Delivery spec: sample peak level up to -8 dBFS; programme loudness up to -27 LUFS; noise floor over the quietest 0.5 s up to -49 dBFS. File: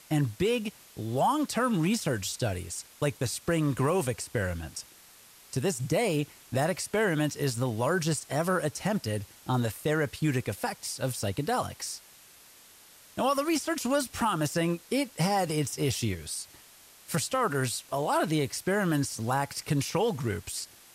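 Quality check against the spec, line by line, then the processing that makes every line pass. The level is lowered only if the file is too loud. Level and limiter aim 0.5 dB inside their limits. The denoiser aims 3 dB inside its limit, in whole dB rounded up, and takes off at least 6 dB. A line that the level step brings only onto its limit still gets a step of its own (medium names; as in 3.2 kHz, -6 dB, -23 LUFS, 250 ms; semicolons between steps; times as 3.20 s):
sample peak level -15.5 dBFS: pass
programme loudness -29.5 LUFS: pass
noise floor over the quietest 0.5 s -55 dBFS: pass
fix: none needed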